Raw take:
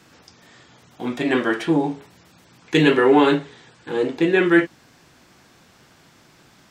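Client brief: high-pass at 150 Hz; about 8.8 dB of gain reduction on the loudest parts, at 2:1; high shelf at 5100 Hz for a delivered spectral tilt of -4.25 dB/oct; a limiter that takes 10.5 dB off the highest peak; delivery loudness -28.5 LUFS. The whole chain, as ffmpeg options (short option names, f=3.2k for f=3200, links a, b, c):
-af "highpass=150,highshelf=f=5.1k:g=-5.5,acompressor=threshold=-27dB:ratio=2,volume=1.5dB,alimiter=limit=-18dB:level=0:latency=1"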